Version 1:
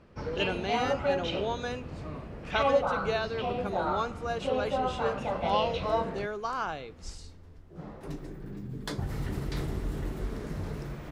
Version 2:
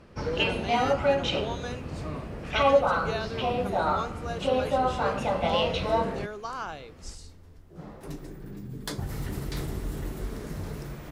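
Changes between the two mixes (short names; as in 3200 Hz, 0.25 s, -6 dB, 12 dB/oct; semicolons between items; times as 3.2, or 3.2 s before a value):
speech -3.0 dB; first sound +4.5 dB; master: add high shelf 6800 Hz +11 dB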